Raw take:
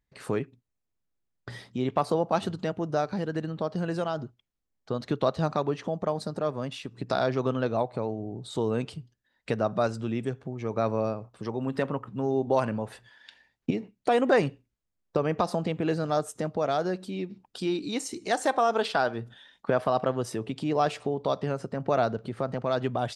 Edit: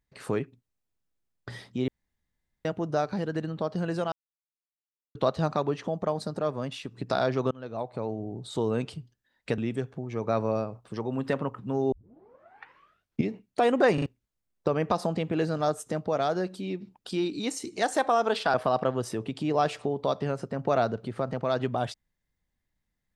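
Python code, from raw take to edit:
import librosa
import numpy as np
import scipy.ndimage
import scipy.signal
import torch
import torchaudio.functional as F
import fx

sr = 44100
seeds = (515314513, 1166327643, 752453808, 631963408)

y = fx.edit(x, sr, fx.room_tone_fill(start_s=1.88, length_s=0.77),
    fx.silence(start_s=4.12, length_s=1.03),
    fx.fade_in_from(start_s=7.51, length_s=0.65, floor_db=-23.5),
    fx.cut(start_s=9.58, length_s=0.49),
    fx.tape_start(start_s=12.41, length_s=1.4),
    fx.stutter_over(start_s=14.43, slice_s=0.04, count=3),
    fx.cut(start_s=19.03, length_s=0.72), tone=tone)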